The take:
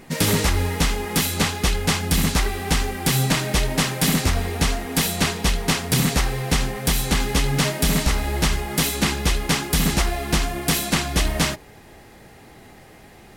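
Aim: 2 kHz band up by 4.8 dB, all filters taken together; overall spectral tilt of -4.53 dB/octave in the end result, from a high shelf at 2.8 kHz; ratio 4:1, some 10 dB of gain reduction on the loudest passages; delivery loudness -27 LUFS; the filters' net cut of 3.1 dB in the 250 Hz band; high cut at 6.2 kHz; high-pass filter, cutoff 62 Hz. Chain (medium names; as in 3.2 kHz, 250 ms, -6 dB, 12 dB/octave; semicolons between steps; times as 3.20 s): high-pass 62 Hz; low-pass 6.2 kHz; peaking EQ 250 Hz -4.5 dB; peaking EQ 2 kHz +8.5 dB; treble shelf 2.8 kHz -7 dB; compression 4:1, threshold -29 dBFS; trim +4 dB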